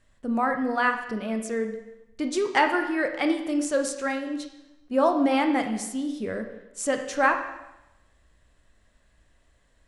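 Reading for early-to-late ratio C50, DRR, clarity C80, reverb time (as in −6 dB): 7.5 dB, 5.0 dB, 10.0 dB, 0.95 s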